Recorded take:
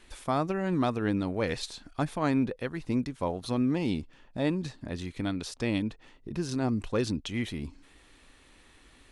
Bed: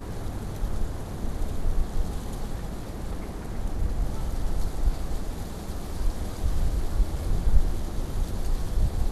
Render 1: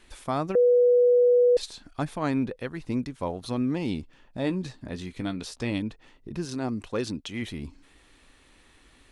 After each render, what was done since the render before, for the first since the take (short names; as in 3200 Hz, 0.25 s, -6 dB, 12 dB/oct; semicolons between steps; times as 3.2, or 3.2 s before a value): 0.55–1.57 bleep 489 Hz -15.5 dBFS; 4.42–5.72 doubler 16 ms -10.5 dB; 6.45–7.42 low shelf 97 Hz -11 dB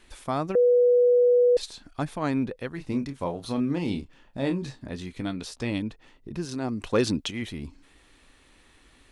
2.75–4.85 doubler 29 ms -7.5 dB; 6.83–7.31 gain +6.5 dB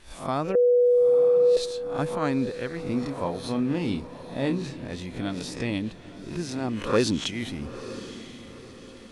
spectral swells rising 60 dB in 0.37 s; diffused feedback echo 0.936 s, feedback 43%, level -13 dB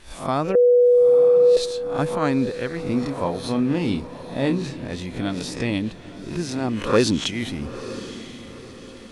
gain +4.5 dB